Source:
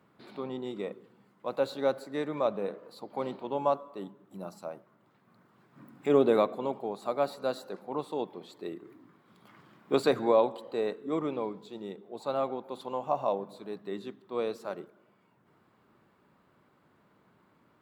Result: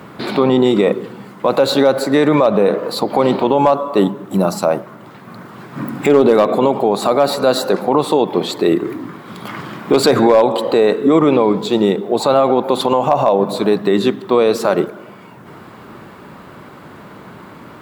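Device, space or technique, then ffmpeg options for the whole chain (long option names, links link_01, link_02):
loud club master: -af "acompressor=threshold=-37dB:ratio=1.5,asoftclip=type=hard:threshold=-22.5dB,alimiter=level_in=31dB:limit=-1dB:release=50:level=0:latency=1,volume=-2.5dB"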